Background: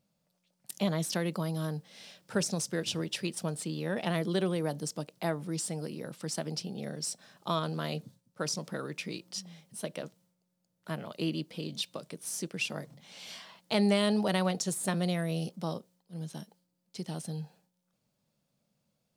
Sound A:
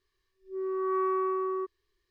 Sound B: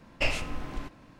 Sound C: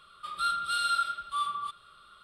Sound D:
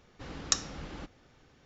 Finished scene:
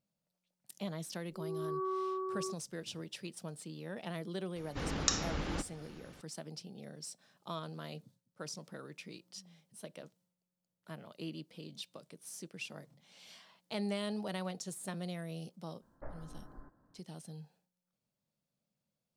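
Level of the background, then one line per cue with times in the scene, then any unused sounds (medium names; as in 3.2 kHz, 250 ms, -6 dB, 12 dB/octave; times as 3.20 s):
background -10.5 dB
0.87 s: add A -8 dB + steep low-pass 1.4 kHz 48 dB/octave
4.56 s: add D -8 dB + loudness maximiser +13.5 dB
15.81 s: add B -16 dB + steep low-pass 1.7 kHz 72 dB/octave
not used: C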